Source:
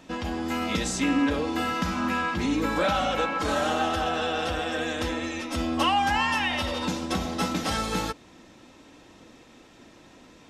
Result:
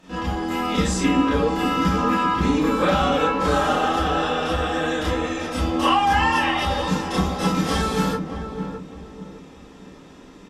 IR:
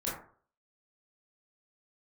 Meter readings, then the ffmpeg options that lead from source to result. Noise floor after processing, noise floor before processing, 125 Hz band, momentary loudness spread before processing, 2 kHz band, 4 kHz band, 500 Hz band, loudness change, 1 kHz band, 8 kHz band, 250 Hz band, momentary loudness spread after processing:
-44 dBFS, -53 dBFS, +8.5 dB, 6 LU, +3.0 dB, +3.0 dB, +6.0 dB, +5.0 dB, +6.0 dB, +2.0 dB, +5.5 dB, 12 LU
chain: -filter_complex "[0:a]asplit=2[a][b];[b]adelay=609,lowpass=f=800:p=1,volume=-6dB,asplit=2[c][d];[d]adelay=609,lowpass=f=800:p=1,volume=0.37,asplit=2[e][f];[f]adelay=609,lowpass=f=800:p=1,volume=0.37,asplit=2[g][h];[h]adelay=609,lowpass=f=800:p=1,volume=0.37[i];[a][c][e][g][i]amix=inputs=5:normalize=0[j];[1:a]atrim=start_sample=2205,atrim=end_sample=3087,asetrate=36603,aresample=44100[k];[j][k]afir=irnorm=-1:irlink=0"

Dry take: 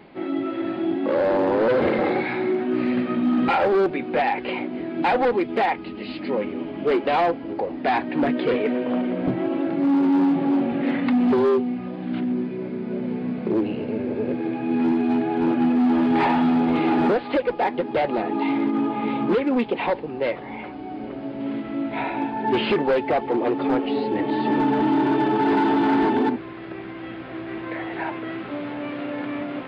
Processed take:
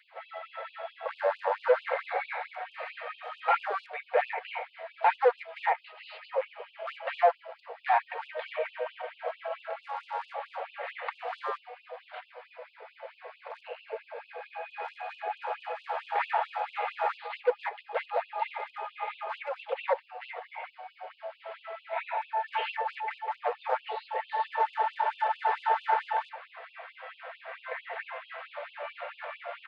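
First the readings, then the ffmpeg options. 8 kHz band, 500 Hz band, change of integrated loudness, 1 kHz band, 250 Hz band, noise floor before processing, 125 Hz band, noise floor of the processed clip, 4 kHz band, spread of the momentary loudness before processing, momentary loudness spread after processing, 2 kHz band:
n/a, -10.5 dB, -10.0 dB, -5.0 dB, under -40 dB, -35 dBFS, under -40 dB, -60 dBFS, -9.0 dB, 11 LU, 17 LU, -5.5 dB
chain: -filter_complex "[0:a]acrossover=split=2700[a][b];[b]acompressor=threshold=-45dB:ratio=4:attack=1:release=60[c];[a][c]amix=inputs=2:normalize=0,highshelf=f=3k:g=-11.5,bandreject=f=60:t=h:w=6,bandreject=f=120:t=h:w=6,bandreject=f=180:t=h:w=6,bandreject=f=240:t=h:w=6,bandreject=f=300:t=h:w=6,bandreject=f=360:t=h:w=6,bandreject=f=420:t=h:w=6,bandreject=f=480:t=h:w=6,aecho=1:1:4.4:0.34,afftfilt=real='re*gte(b*sr/1024,430*pow(2600/430,0.5+0.5*sin(2*PI*4.5*pts/sr)))':imag='im*gte(b*sr/1024,430*pow(2600/430,0.5+0.5*sin(2*PI*4.5*pts/sr)))':win_size=1024:overlap=0.75"

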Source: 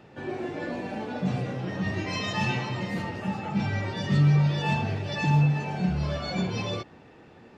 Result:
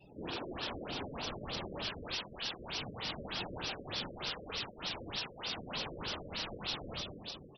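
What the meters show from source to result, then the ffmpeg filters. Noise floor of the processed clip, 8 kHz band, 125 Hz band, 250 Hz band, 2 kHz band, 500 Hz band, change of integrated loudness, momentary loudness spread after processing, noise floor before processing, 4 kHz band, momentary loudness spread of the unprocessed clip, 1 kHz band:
-55 dBFS, n/a, -24.5 dB, -18.0 dB, -10.0 dB, -10.0 dB, -12.0 dB, 3 LU, -52 dBFS, 0.0 dB, 11 LU, -11.0 dB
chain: -filter_complex "[0:a]aeval=exprs='(mod(14.1*val(0)+1,2)-1)/14.1':c=same,highpass=f=60:p=1,aecho=1:1:80|192|348.8|568.3|875.6:0.631|0.398|0.251|0.158|0.1,aeval=exprs='0.0266*(abs(mod(val(0)/0.0266+3,4)-2)-1)':c=same,aexciter=amount=7.1:drive=4:freq=2.9k,afftfilt=real='hypot(re,im)*cos(2*PI*random(0))':imag='hypot(re,im)*sin(2*PI*random(1))':win_size=512:overlap=0.75,aresample=16000,aresample=44100,acrossover=split=3000[a][b];[b]acompressor=threshold=-38dB:ratio=4:attack=1:release=60[c];[a][c]amix=inputs=2:normalize=0,afftdn=nr=30:nf=-53,afftfilt=real='re*lt(b*sr/1024,590*pow(6000/590,0.5+0.5*sin(2*PI*3.3*pts/sr)))':imag='im*lt(b*sr/1024,590*pow(6000/590,0.5+0.5*sin(2*PI*3.3*pts/sr)))':win_size=1024:overlap=0.75,volume=1dB"

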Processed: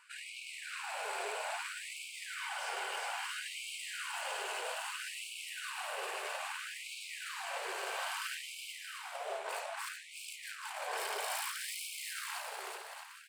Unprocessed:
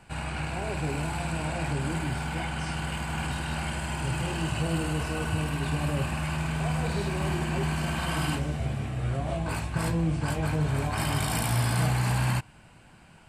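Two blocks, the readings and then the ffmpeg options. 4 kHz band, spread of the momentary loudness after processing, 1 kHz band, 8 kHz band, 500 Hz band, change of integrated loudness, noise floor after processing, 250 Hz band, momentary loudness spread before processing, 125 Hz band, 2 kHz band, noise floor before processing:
-3.5 dB, 6 LU, -7.0 dB, -4.5 dB, -10.0 dB, -10.5 dB, -49 dBFS, under -35 dB, 6 LU, under -40 dB, -5.0 dB, -53 dBFS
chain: -af "asoftclip=type=hard:threshold=-29.5dB,aecho=1:1:370|629|810.3|937.2|1026:0.631|0.398|0.251|0.158|0.1,afftfilt=real='re*gte(b*sr/1024,350*pow(2200/350,0.5+0.5*sin(2*PI*0.61*pts/sr)))':imag='im*gte(b*sr/1024,350*pow(2200/350,0.5+0.5*sin(2*PI*0.61*pts/sr)))':win_size=1024:overlap=0.75,volume=-3.5dB"

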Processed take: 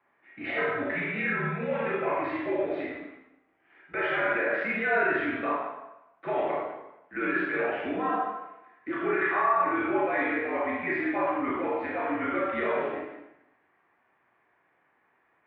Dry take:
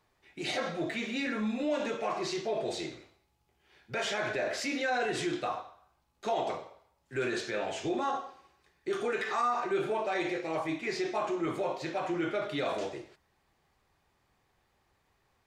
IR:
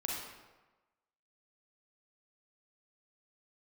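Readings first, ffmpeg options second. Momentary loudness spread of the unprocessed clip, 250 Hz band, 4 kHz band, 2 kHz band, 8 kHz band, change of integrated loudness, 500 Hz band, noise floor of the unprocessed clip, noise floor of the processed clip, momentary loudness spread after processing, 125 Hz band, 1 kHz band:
9 LU, +3.5 dB, -9.0 dB, +8.0 dB, under -35 dB, +4.5 dB, +3.5 dB, -74 dBFS, -69 dBFS, 13 LU, +3.0 dB, +5.0 dB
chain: -filter_complex "[0:a]highpass=f=210:t=q:w=0.5412,highpass=f=210:t=q:w=1.307,lowpass=f=2.2k:t=q:w=0.5176,lowpass=f=2.2k:t=q:w=0.7071,lowpass=f=2.2k:t=q:w=1.932,afreqshift=-59[a];[1:a]atrim=start_sample=2205,asetrate=57330,aresample=44100[b];[a][b]afir=irnorm=-1:irlink=0,crystalizer=i=7.5:c=0,volume=2dB"

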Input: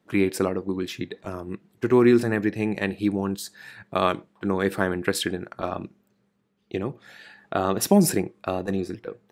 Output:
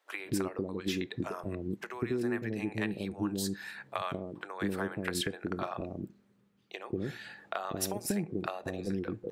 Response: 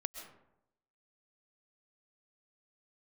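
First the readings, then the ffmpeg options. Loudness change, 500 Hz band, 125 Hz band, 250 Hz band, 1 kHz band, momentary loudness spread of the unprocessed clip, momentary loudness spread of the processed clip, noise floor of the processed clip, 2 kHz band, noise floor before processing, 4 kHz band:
-11.0 dB, -12.0 dB, -9.0 dB, -10.5 dB, -10.0 dB, 16 LU, 7 LU, -68 dBFS, -8.0 dB, -69 dBFS, -6.5 dB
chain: -filter_complex "[0:a]acompressor=threshold=-28dB:ratio=10,acrossover=split=550[a][b];[a]adelay=190[c];[c][b]amix=inputs=2:normalize=0"

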